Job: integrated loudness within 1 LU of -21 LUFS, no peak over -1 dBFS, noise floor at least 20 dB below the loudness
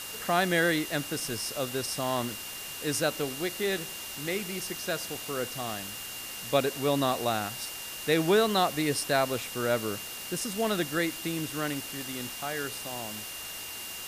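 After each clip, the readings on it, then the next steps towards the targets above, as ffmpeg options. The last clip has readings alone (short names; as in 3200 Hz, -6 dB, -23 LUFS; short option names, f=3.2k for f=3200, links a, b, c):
steady tone 2800 Hz; tone level -43 dBFS; noise floor -40 dBFS; noise floor target -50 dBFS; loudness -30.0 LUFS; peak -11.5 dBFS; loudness target -21.0 LUFS
-> -af "bandreject=f=2.8k:w=30"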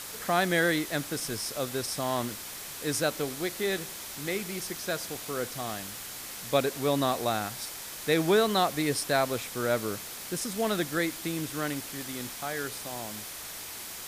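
steady tone none; noise floor -41 dBFS; noise floor target -50 dBFS
-> -af "afftdn=nr=9:nf=-41"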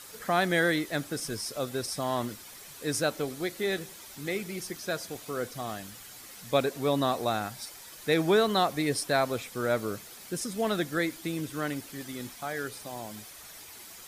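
noise floor -48 dBFS; noise floor target -51 dBFS
-> -af "afftdn=nr=6:nf=-48"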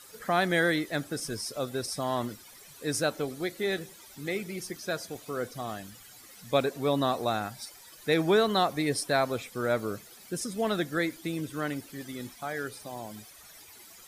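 noise floor -52 dBFS; loudness -30.5 LUFS; peak -11.5 dBFS; loudness target -21.0 LUFS
-> -af "volume=9.5dB"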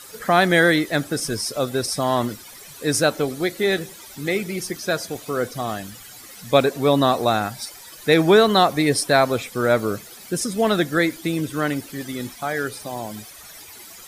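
loudness -21.0 LUFS; peak -2.0 dBFS; noise floor -42 dBFS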